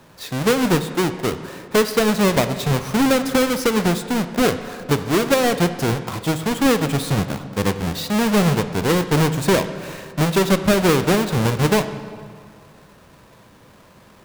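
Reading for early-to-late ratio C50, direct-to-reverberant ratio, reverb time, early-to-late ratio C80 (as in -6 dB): 11.0 dB, 9.5 dB, 2.0 s, 12.0 dB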